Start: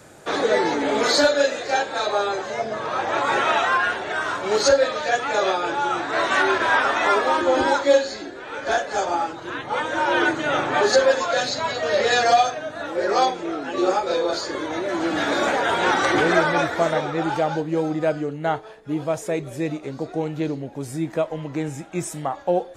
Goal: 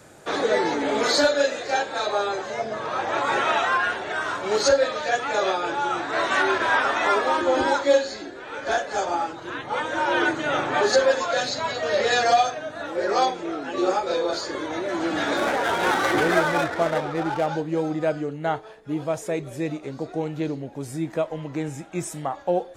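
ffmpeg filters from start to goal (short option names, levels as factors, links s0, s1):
-filter_complex "[0:a]asettb=1/sr,asplit=3[s0][s1][s2];[s0]atrim=end=15.374[s3];[s1]atrim=start=15.37:end=17.47,asetpts=PTS-STARTPTS,afade=t=in:d=0.004:c=qsin,afade=t=out:st=2.096:d=0.004:c=qsin,adynamicsmooth=sensitivity=4.5:basefreq=920[s4];[s2]atrim=start=17.466[s5];[s3][s4]acrossfade=d=0.004:c1=hsin:c2=qsin[s6];[s6][s5]acrossfade=d=0.004:c1=qsin:c2=hsin,volume=0.794"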